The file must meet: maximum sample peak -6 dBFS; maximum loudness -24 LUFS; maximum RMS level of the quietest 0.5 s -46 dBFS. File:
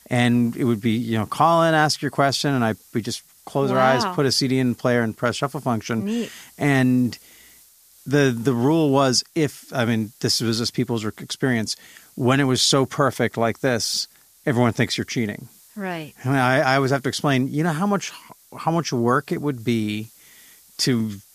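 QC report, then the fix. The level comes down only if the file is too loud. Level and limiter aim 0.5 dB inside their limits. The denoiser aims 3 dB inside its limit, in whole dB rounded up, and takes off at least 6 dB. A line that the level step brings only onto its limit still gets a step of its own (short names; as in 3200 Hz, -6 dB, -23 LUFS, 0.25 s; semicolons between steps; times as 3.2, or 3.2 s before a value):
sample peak -4.0 dBFS: fail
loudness -21.5 LUFS: fail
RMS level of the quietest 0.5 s -52 dBFS: OK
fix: gain -3 dB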